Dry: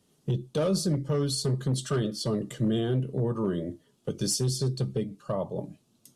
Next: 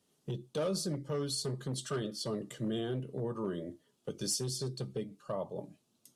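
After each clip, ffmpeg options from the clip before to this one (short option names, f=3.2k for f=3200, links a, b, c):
-af "lowshelf=f=200:g=-9,volume=-5dB"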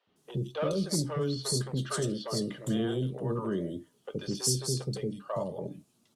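-filter_complex "[0:a]acrossover=split=510|3600[a][b][c];[a]adelay=70[d];[c]adelay=160[e];[d][b][e]amix=inputs=3:normalize=0,volume=6dB"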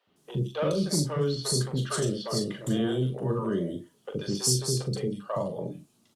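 -filter_complex "[0:a]asplit=2[a][b];[b]adelay=40,volume=-7dB[c];[a][c]amix=inputs=2:normalize=0,volume=2.5dB"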